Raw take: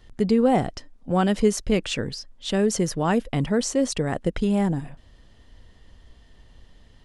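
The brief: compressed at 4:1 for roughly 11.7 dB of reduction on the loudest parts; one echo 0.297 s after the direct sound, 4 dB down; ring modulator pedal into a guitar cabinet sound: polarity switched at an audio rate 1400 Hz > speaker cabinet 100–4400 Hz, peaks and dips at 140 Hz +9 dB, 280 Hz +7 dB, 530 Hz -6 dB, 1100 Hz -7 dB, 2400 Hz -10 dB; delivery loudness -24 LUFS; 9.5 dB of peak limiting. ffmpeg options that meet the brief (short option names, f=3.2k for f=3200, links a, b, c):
-af "acompressor=threshold=-29dB:ratio=4,alimiter=level_in=3.5dB:limit=-24dB:level=0:latency=1,volume=-3.5dB,aecho=1:1:297:0.631,aeval=exprs='val(0)*sgn(sin(2*PI*1400*n/s))':c=same,highpass=100,equalizer=f=140:t=q:w=4:g=9,equalizer=f=280:t=q:w=4:g=7,equalizer=f=530:t=q:w=4:g=-6,equalizer=f=1.1k:t=q:w=4:g=-7,equalizer=f=2.4k:t=q:w=4:g=-10,lowpass=f=4.4k:w=0.5412,lowpass=f=4.4k:w=1.3066,volume=14dB"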